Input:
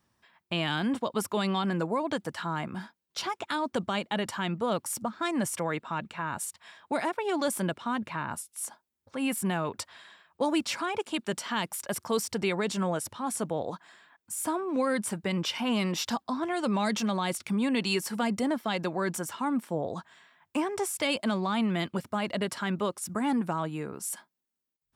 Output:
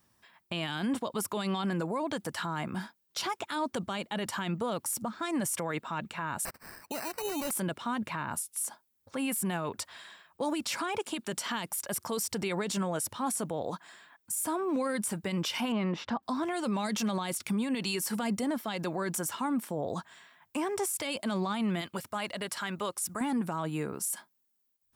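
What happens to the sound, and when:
6.45–7.51 s: sample-rate reducer 3.4 kHz
15.72–16.23 s: low-pass 1.8 kHz
21.81–23.21 s: peaking EQ 210 Hz -8.5 dB 2.7 oct
whole clip: treble shelf 8.4 kHz +10.5 dB; peak limiter -25 dBFS; trim +1.5 dB

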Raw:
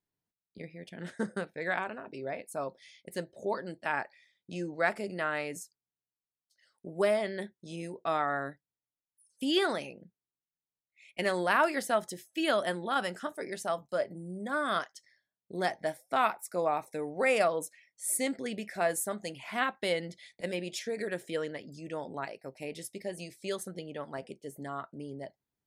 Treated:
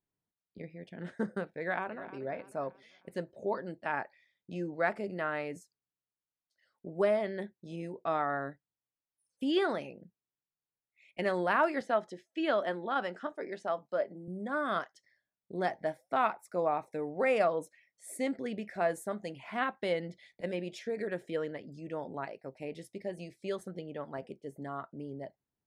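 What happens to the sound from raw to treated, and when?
1.58–2.20 s: echo throw 310 ms, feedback 45%, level -15.5 dB
11.81–14.28 s: band-pass 220–6000 Hz
whole clip: low-pass 1.6 kHz 6 dB/octave

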